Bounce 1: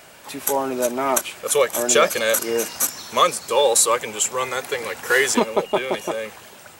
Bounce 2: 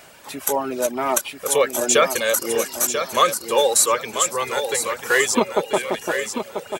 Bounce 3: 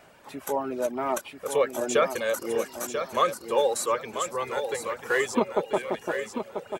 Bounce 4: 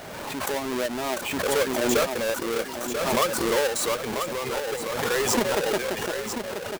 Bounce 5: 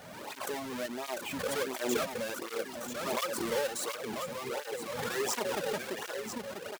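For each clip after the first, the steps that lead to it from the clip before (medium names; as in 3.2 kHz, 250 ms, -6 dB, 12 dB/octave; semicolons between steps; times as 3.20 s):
reverb removal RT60 0.56 s; on a send: feedback delay 989 ms, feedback 27%, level -8 dB
treble shelf 2.6 kHz -12 dB; trim -4.5 dB
square wave that keeps the level; swell ahead of each attack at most 28 dB/s; trim -5 dB
cancelling through-zero flanger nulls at 1.4 Hz, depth 3.2 ms; trim -6 dB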